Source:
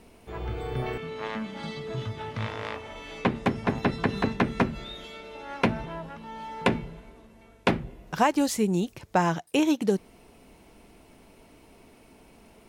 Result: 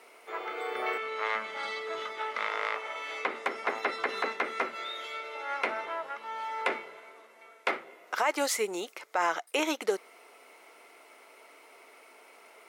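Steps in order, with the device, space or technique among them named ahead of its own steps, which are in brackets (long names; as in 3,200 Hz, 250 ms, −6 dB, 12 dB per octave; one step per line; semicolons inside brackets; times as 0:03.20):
laptop speaker (high-pass filter 430 Hz 24 dB per octave; parametric band 1,300 Hz +9.5 dB 0.35 octaves; parametric band 2,100 Hz +10.5 dB 0.2 octaves; brickwall limiter −17.5 dBFS, peak gain reduction 11 dB)
level +1 dB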